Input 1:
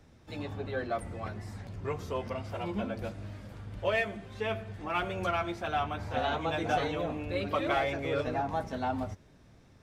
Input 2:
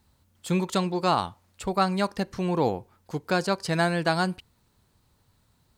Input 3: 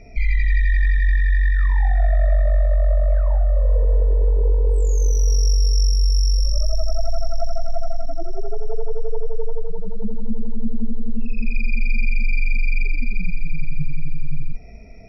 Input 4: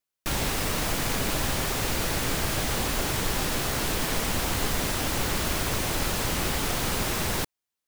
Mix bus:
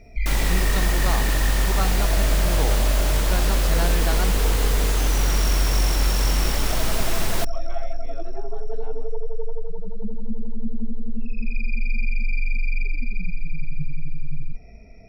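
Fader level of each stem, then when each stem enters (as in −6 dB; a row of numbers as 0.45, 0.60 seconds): −14.0, −6.0, −4.0, +0.5 decibels; 0.00, 0.00, 0.00, 0.00 seconds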